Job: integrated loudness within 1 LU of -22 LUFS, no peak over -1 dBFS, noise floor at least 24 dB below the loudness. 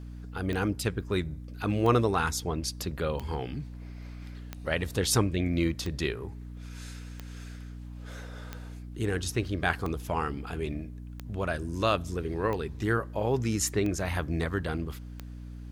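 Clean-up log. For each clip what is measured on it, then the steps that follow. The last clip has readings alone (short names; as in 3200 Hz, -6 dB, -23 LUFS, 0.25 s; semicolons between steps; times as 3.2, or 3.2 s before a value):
clicks 12; hum 60 Hz; harmonics up to 300 Hz; hum level -39 dBFS; loudness -30.5 LUFS; peak -9.5 dBFS; loudness target -22.0 LUFS
-> de-click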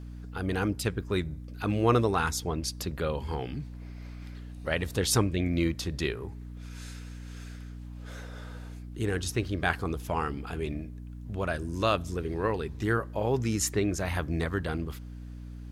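clicks 0; hum 60 Hz; harmonics up to 300 Hz; hum level -39 dBFS
-> de-hum 60 Hz, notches 5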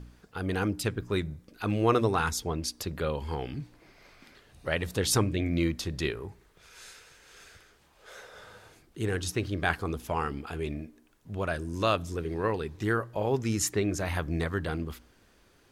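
hum none; loudness -30.5 LUFS; peak -10.0 dBFS; loudness target -22.0 LUFS
-> gain +8.5 dB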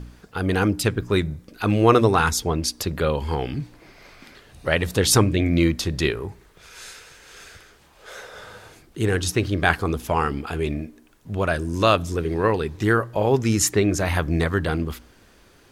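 loudness -22.0 LUFS; peak -1.5 dBFS; noise floor -54 dBFS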